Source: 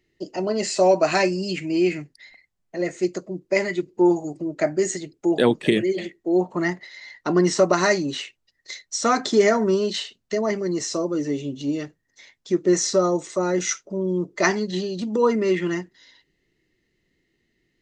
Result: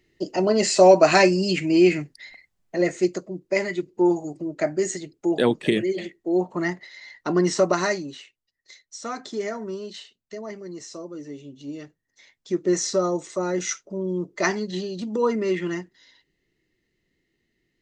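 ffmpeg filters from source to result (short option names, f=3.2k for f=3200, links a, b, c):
-af "volume=13dB,afade=t=out:st=2.79:d=0.51:silence=0.501187,afade=t=out:st=7.7:d=0.48:silence=0.316228,afade=t=in:st=11.53:d=1.09:silence=0.354813"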